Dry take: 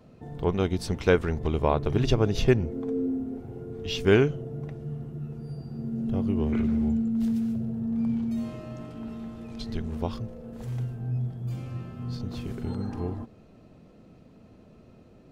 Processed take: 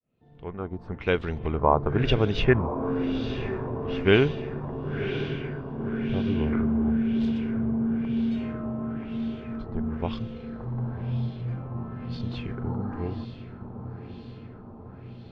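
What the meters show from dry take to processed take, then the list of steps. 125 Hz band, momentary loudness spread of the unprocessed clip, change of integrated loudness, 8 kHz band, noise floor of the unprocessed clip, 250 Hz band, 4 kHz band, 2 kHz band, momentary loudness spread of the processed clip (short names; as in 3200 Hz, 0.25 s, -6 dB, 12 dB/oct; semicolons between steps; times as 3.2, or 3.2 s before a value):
+0.5 dB, 14 LU, +1.0 dB, n/a, -53 dBFS, +1.0 dB, +2.0 dB, +3.5 dB, 17 LU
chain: opening faded in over 1.78 s; diffused feedback echo 1.029 s, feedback 63%, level -9.5 dB; LFO low-pass sine 1 Hz 990–3700 Hz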